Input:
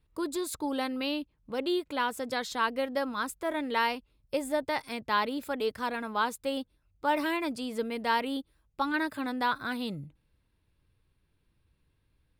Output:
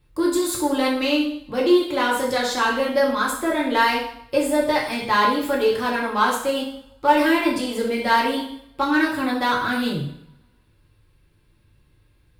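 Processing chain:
in parallel at −3 dB: soft clipping −29.5 dBFS, distortion −9 dB
on the sum: coupled-rooms reverb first 0.63 s, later 1.8 s, from −28 dB, DRR −3.5 dB
level +2.5 dB

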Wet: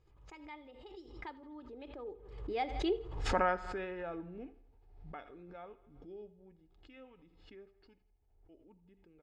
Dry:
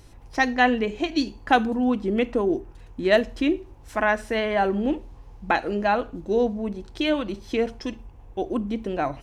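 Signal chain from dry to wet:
source passing by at 0:03.20, 58 m/s, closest 3.4 metres
high-frequency loss of the air 130 metres
notch filter 5,900 Hz, Q 13
comb filter 2.4 ms, depth 39%
feedback echo with a high-pass in the loop 82 ms, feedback 54%, high-pass 170 Hz, level −19 dB
background raised ahead of every attack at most 60 dB per second
level +3 dB

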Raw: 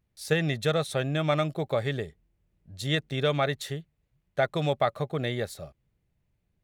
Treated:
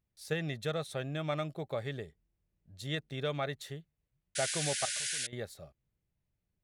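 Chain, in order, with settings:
0:04.73–0:05.33: output level in coarse steps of 22 dB
0:04.35–0:05.27: sound drawn into the spectrogram noise 1,400–11,000 Hz −27 dBFS
level −9 dB

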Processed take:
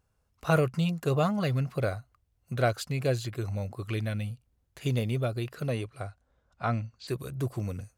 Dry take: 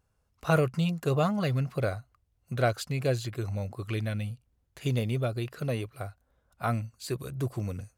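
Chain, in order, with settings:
0:05.69–0:07.07: low-pass filter 12,000 Hz → 4,900 Hz 24 dB per octave

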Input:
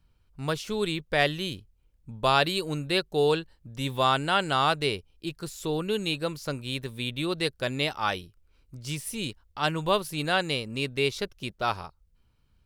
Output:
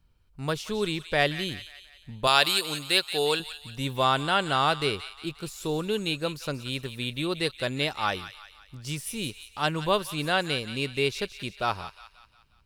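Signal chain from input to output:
0:02.27–0:03.40: spectral tilt +3 dB per octave
on a send: delay with a high-pass on its return 178 ms, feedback 49%, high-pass 1,500 Hz, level −10.5 dB

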